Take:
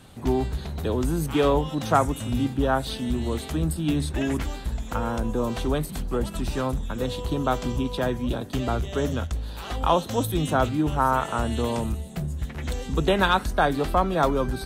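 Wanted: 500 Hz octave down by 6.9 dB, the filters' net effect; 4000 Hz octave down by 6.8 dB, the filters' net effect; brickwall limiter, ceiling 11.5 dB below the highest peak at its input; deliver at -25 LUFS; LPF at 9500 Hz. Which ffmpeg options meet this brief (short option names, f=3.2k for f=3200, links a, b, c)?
-af "lowpass=9.5k,equalizer=f=500:t=o:g=-9,equalizer=f=4k:t=o:g=-8.5,volume=5.5dB,alimiter=limit=-14.5dB:level=0:latency=1"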